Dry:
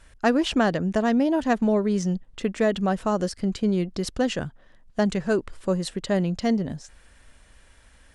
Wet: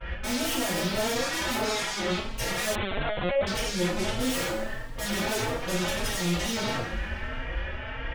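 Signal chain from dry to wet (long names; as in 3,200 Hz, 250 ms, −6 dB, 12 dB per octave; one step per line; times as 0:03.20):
noise gate with hold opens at −49 dBFS
elliptic low-pass filter 3,000 Hz
hum removal 109.5 Hz, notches 8
brickwall limiter −21.5 dBFS, peak gain reduction 10.5 dB
asymmetric clip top −44.5 dBFS, bottom −26.5 dBFS
0:01.15–0:02.10: notch comb filter 310 Hz
sine wavefolder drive 19 dB, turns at −26.5 dBFS
coupled-rooms reverb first 0.56 s, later 2.3 s, from −18 dB, DRR −9 dB
0:02.75–0:03.47: linear-prediction vocoder at 8 kHz pitch kept
barber-pole flanger 3.8 ms +1.6 Hz
level −5 dB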